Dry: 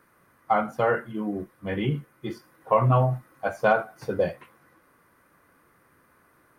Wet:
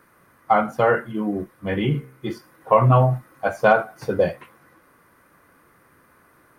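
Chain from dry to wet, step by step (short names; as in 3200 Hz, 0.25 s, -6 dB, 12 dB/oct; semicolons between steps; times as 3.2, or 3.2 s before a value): 1.79–2.27 de-hum 65.53 Hz, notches 39; gain +5 dB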